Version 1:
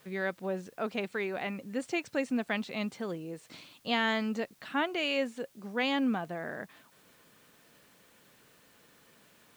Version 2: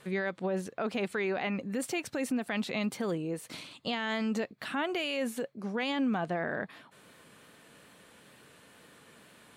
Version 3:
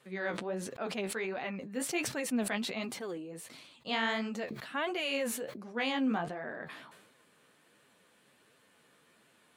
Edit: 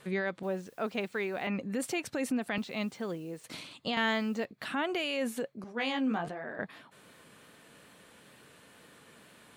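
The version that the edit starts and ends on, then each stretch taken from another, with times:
2
0.43–1.47 s: from 1
2.58–3.44 s: from 1
3.97–4.45 s: from 1
5.64–6.59 s: from 3

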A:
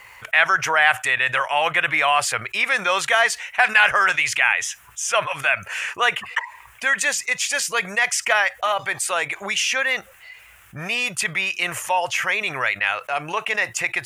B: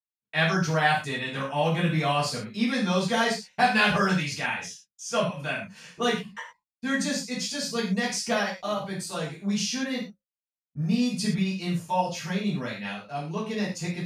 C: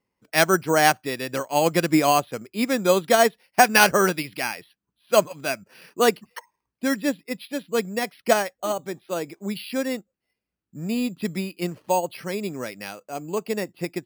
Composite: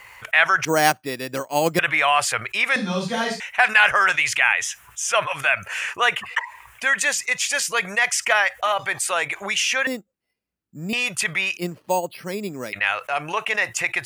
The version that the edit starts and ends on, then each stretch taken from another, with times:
A
0.65–1.79 s: from C
2.76–3.40 s: from B
9.87–10.93 s: from C
11.57–12.73 s: from C

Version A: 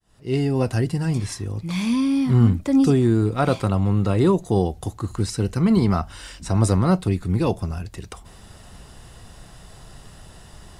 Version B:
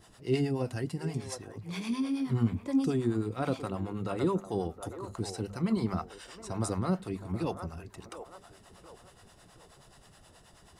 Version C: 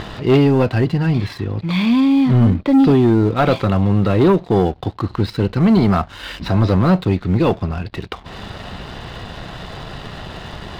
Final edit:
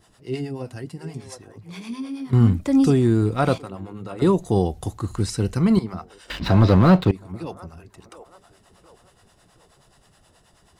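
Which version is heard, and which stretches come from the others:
B
2.33–3.58 s: from A
4.22–5.79 s: from A
6.30–7.11 s: from C

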